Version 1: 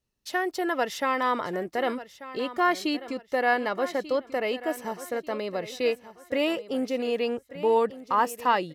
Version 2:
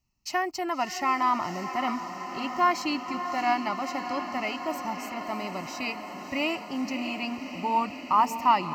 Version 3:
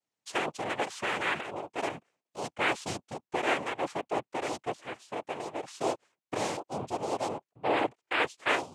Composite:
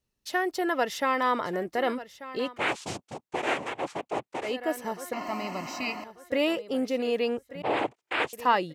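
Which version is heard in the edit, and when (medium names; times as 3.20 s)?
1
2.52–4.47 s: from 3, crossfade 0.16 s
5.13–6.04 s: from 2
7.62–8.33 s: from 3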